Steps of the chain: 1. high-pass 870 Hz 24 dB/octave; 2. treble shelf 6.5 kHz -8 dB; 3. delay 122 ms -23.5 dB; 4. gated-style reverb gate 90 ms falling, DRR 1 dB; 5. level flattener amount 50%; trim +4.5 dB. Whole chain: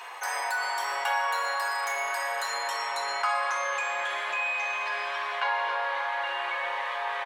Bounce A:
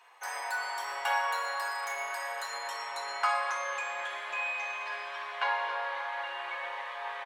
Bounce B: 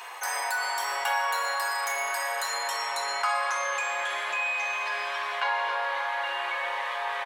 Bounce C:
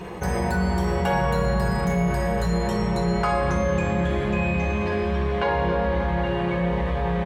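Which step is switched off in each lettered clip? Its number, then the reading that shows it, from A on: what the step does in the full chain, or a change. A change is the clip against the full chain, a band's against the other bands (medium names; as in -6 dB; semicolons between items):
5, crest factor change +3.0 dB; 2, 8 kHz band +4.0 dB; 1, 500 Hz band +15.0 dB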